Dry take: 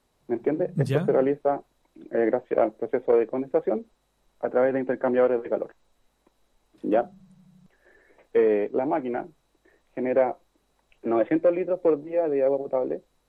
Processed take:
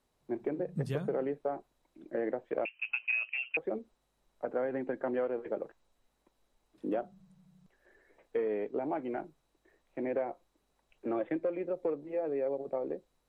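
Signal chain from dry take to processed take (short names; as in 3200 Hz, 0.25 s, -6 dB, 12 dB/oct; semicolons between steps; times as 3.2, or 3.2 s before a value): compressor 3:1, threshold -23 dBFS, peak gain reduction 6.5 dB; 2.65–3.57 inverted band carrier 3000 Hz; gain -7 dB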